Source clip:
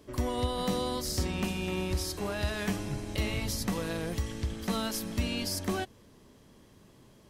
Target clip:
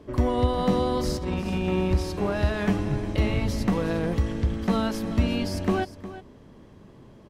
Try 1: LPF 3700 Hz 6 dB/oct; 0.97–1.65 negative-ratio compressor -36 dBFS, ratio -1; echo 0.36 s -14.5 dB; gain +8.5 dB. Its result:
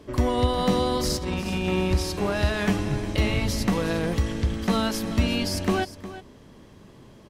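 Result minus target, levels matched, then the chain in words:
4000 Hz band +5.5 dB
LPF 1300 Hz 6 dB/oct; 0.97–1.65 negative-ratio compressor -36 dBFS, ratio -1; echo 0.36 s -14.5 dB; gain +8.5 dB

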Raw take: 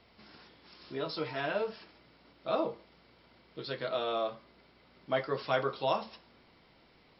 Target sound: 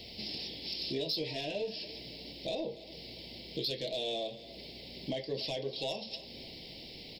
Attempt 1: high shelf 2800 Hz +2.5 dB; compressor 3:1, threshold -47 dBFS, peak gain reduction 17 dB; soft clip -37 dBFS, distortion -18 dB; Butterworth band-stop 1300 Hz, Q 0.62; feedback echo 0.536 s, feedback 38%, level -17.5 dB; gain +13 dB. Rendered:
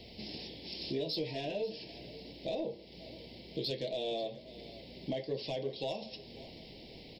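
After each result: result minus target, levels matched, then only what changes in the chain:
echo 0.248 s late; 4000 Hz band -3.5 dB
change: feedback echo 0.288 s, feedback 38%, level -17.5 dB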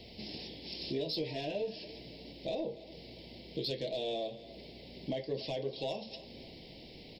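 4000 Hz band -4.0 dB
change: high shelf 2800 Hz +13 dB

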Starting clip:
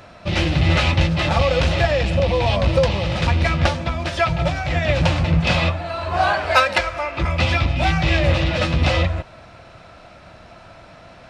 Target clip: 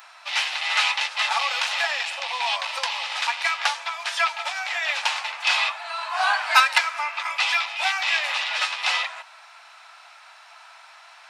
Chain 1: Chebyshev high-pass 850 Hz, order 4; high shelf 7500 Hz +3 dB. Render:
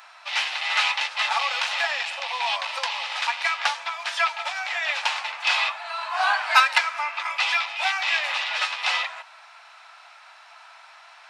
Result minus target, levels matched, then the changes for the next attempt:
8000 Hz band -2.5 dB
change: high shelf 7500 Hz +11 dB

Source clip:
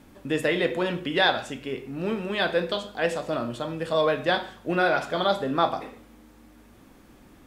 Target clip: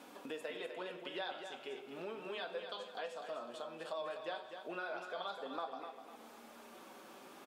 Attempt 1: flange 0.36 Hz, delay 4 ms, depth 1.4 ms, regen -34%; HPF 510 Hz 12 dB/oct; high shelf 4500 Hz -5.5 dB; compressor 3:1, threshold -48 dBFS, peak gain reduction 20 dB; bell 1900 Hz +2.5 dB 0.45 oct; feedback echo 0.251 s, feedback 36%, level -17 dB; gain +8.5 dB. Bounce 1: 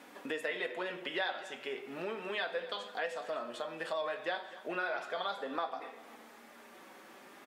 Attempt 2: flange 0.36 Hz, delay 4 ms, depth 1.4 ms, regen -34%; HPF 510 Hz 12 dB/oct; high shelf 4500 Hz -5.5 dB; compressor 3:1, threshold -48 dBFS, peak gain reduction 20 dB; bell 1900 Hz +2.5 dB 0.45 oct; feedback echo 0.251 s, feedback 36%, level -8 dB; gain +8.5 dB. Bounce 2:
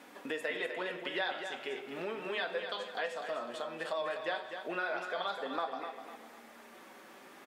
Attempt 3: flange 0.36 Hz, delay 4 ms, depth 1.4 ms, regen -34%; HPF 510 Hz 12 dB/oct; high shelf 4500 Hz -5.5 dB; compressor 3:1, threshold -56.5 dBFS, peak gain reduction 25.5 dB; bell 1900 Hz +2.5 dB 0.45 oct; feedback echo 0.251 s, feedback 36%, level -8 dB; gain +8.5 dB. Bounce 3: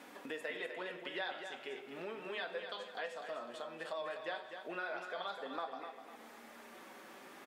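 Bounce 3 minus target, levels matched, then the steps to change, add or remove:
2000 Hz band +3.0 dB
change: bell 1900 Hz -6.5 dB 0.45 oct

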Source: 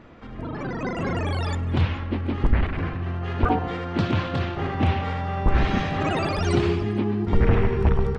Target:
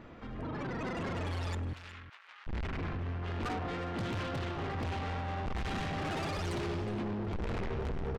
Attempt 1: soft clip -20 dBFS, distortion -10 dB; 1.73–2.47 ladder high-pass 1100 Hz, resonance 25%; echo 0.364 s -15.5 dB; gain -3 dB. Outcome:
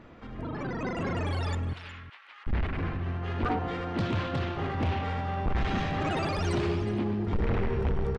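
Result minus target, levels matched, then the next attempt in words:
soft clip: distortion -6 dB
soft clip -30.5 dBFS, distortion -4 dB; 1.73–2.47 ladder high-pass 1100 Hz, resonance 25%; echo 0.364 s -15.5 dB; gain -3 dB

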